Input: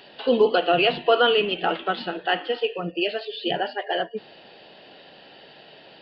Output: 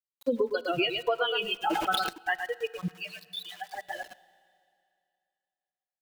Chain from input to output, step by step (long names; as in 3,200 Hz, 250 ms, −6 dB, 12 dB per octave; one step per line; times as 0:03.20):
spectral dynamics exaggerated over time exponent 3
0:00.53–0:01.01: comb filter 2.1 ms, depth 69%
single-tap delay 112 ms −9.5 dB
centre clipping without the shift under −46.5 dBFS
downward compressor 10 to 1, threshold −27 dBFS, peak gain reduction 12.5 dB
0:02.88–0:03.74: high-pass filter 1,000 Hz 24 dB per octave
four-comb reverb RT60 2.5 s, combs from 26 ms, DRR 18.5 dB
0:01.59–0:02.09: level that may fall only so fast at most 31 dB per second
level +3.5 dB